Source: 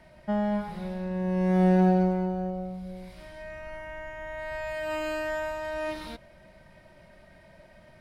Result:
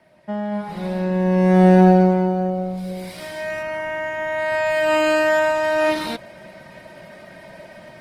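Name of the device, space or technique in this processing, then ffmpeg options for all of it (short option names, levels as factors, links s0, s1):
video call: -filter_complex "[0:a]asettb=1/sr,asplit=3[s0][s1][s2];[s0]atrim=end=2.774[s3];[s1]atrim=start=2.77:end=3.63,asetpts=PTS-STARTPTS,afade=t=in:d=0.004:c=qsin,afade=t=out:st=0.856:d=0.004:c=qsin,highshelf=f=3900:g=7.5[s4];[s2]atrim=start=3.626[s5];[s3][s4]acrossfade=d=0.004:c1=hsin:c2=qsin[s6];[s6][s5]acrossfade=d=0.004:c1=qsin:c2=hsin,highpass=160,dynaudnorm=f=500:g=3:m=5.01" -ar 48000 -c:a libopus -b:a 20k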